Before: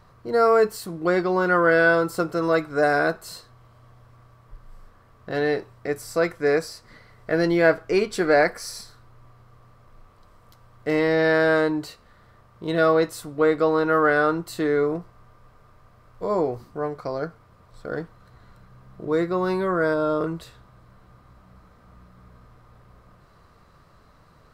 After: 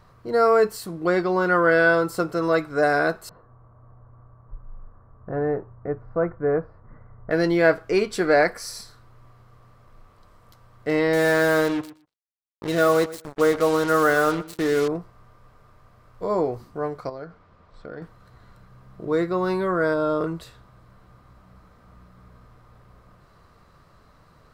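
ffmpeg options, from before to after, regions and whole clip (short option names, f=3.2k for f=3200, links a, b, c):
-filter_complex "[0:a]asettb=1/sr,asplit=3[a][b][c];[a]atrim=end=3.294[d];[b]atrim=start=3.29:end=7.31,asetpts=PTS-STARTPTS,afade=t=in:d=0.004:c=qsin,afade=t=out:st=4.016:d=0.004:c=qsin,lowpass=f=1.3k:w=0.5412,lowpass=f=1.3k:w=1.3066,asubboost=boost=2.5:cutoff=190[e];[c]atrim=start=7.306[f];[d][e]acrossfade=d=0.004:c1=hsin:c2=qsin[g];[g][f]acrossfade=d=0.004:c1=qsin:c2=hsin,asettb=1/sr,asplit=3[h][i][j];[h]atrim=end=11.134[k];[i]atrim=start=11.13:end=14.88,asetpts=PTS-STARTPTS,afade=t=in:d=0.004:c=qsin,afade=t=out:st=3.746:d=0.004:c=qsin,acrusher=bits=4:mix=0:aa=0.5,asplit=2[l][m];[m]adelay=120,lowpass=f=4.8k:p=1,volume=-16.5dB,asplit=2[n][o];[o]adelay=120,lowpass=f=4.8k:p=1,volume=0.15[p];[l][n][p]amix=inputs=3:normalize=0,atrim=end_sample=165375[q];[j]atrim=start=14.876[r];[k][q]acrossfade=d=0.004:c1=hsin:c2=qsin[s];[s][r]acrossfade=d=0.004:c1=qsin:c2=hsin,asettb=1/sr,asplit=3[t][u][v];[t]atrim=end=17.094[w];[u]atrim=start=17.09:end=18.02,asetpts=PTS-STARTPTS,afade=t=in:d=0.004:c=qsin,afade=t=out:st=0.926:d=0.004:c=qsin,lowpass=4.5k,bandreject=f=60:t=h:w=6,bandreject=f=120:t=h:w=6,bandreject=f=180:t=h:w=6,acompressor=threshold=-33dB:ratio=4:attack=3.2:release=140:knee=1:detection=peak[x];[v]atrim=start=18.016[y];[w][x]acrossfade=d=0.004:c1=hsin:c2=qsin[z];[z][y]acrossfade=d=0.004:c1=qsin:c2=hsin"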